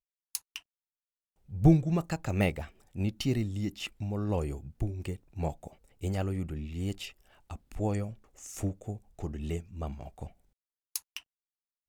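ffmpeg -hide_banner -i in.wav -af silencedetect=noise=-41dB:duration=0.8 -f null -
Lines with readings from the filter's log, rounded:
silence_start: 0.58
silence_end: 1.51 | silence_duration: 0.93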